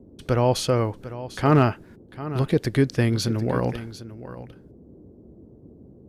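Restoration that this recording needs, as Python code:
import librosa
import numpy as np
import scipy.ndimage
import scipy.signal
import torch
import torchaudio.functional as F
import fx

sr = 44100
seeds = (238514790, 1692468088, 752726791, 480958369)

y = fx.fix_declip(x, sr, threshold_db=-8.0)
y = fx.noise_reduce(y, sr, print_start_s=5.12, print_end_s=5.62, reduce_db=18.0)
y = fx.fix_echo_inverse(y, sr, delay_ms=747, level_db=-14.5)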